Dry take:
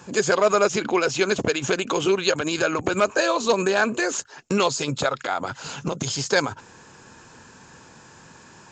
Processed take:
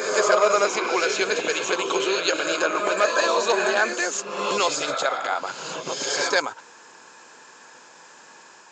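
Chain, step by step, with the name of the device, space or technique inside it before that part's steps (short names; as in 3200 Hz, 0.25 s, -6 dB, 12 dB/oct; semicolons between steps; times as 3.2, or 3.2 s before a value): ghost voice (reverse; reverb RT60 1.0 s, pre-delay 94 ms, DRR 2.5 dB; reverse; HPF 480 Hz 12 dB/oct)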